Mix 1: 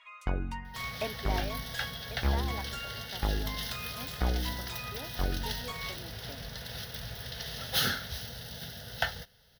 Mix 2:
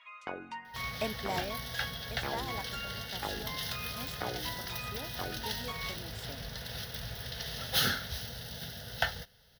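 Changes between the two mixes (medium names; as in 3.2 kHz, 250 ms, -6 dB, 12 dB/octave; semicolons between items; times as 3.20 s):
speech: remove brick-wall FIR band-pass 220–3100 Hz; first sound: add band-pass 400–5500 Hz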